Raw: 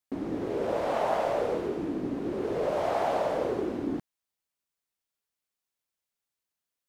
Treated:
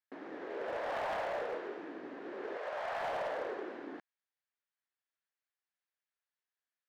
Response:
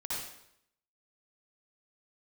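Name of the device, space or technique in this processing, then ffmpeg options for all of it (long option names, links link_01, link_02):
megaphone: -filter_complex "[0:a]asettb=1/sr,asplit=3[link_01][link_02][link_03];[link_01]atrim=end=2.574[link_04];[link_02]atrim=start=2.57:end=3.03,asetpts=PTS-STARTPTS,afade=type=in:duration=0.004:curve=qsin,afade=type=out:start_time=0.456:duration=0.004:curve=qsin,highpass=630[link_05];[link_03]atrim=start=3.026[link_06];[link_04][link_05]acrossfade=duration=0.004:curve1=hsin:curve2=qsin[link_07];[link_07][link_06]acrossfade=duration=0.004:curve1=qsin:curve2=hsin,highpass=500,lowpass=3900,equalizer=frequency=1700:width_type=o:width=0.49:gain=8.5,asoftclip=type=hard:threshold=-26.5dB,volume=-6dB"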